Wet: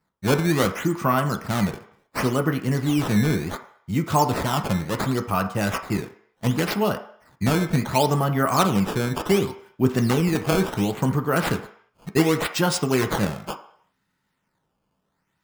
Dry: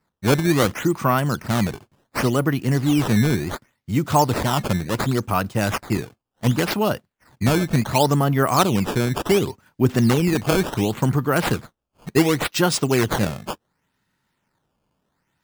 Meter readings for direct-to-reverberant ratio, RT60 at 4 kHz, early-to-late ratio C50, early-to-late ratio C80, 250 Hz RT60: 5.0 dB, 0.65 s, 11.5 dB, 14.5 dB, 0.40 s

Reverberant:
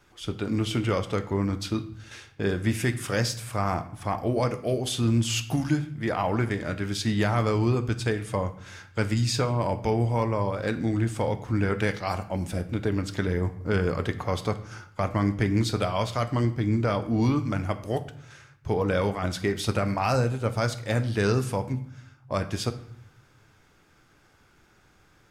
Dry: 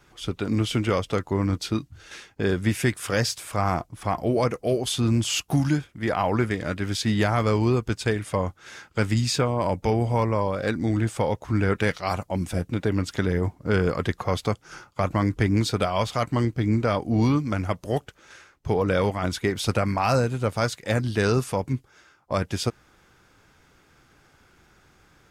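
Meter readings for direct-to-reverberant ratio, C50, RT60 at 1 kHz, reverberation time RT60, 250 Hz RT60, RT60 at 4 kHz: 9.5 dB, 14.0 dB, 0.65 s, 0.65 s, 1.0 s, 0.55 s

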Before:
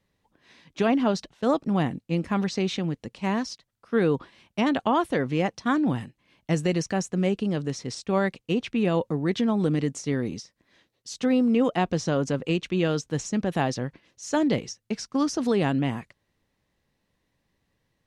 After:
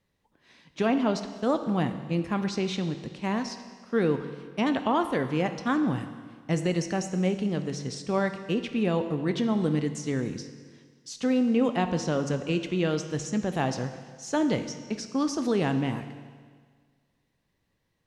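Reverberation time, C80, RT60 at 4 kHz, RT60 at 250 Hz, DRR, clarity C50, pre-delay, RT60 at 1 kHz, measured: 1.7 s, 11.0 dB, 1.7 s, 1.7 s, 8.5 dB, 10.0 dB, 21 ms, 1.7 s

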